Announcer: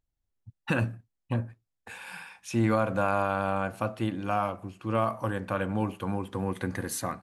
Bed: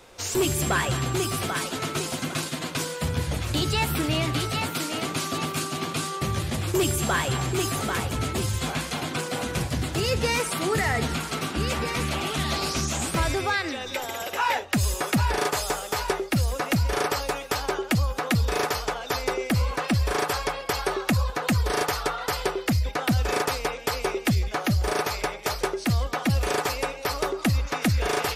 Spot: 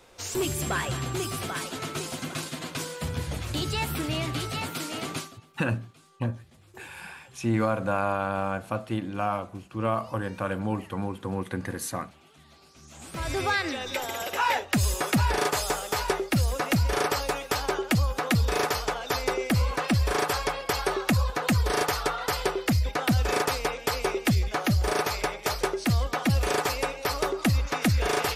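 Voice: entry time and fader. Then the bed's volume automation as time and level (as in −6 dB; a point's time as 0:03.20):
4.90 s, 0.0 dB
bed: 0:05.18 −4.5 dB
0:05.41 −28.5 dB
0:12.73 −28.5 dB
0:13.41 −0.5 dB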